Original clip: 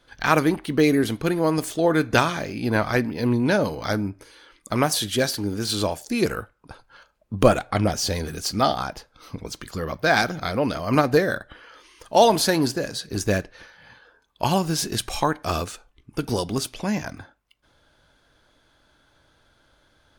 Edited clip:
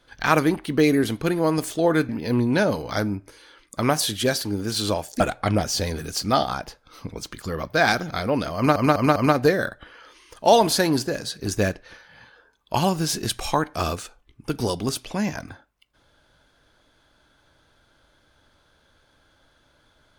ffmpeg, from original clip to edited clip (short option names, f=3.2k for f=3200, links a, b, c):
-filter_complex "[0:a]asplit=6[a][b][c][d][e][f];[a]atrim=end=2.092[g];[b]atrim=start=3.018:end=6.132[h];[c]atrim=start=7.488:end=11.052[i];[d]atrim=start=10.848:end=11.052[j];[e]atrim=start=10.848:end=11.052[k];[f]atrim=start=10.848[l];[g][h]acrossfade=d=0.004:c1=hsin:c2=hsin[m];[m][i]acrossfade=d=0.004:c1=hsin:c2=hsin[n];[n][j]acrossfade=d=0.004:c1=hsin:c2=hsin[o];[o][k]acrossfade=d=0.004:c1=hsin:c2=hsin[p];[p][l]acrossfade=d=0.004:c1=hsin:c2=hsin"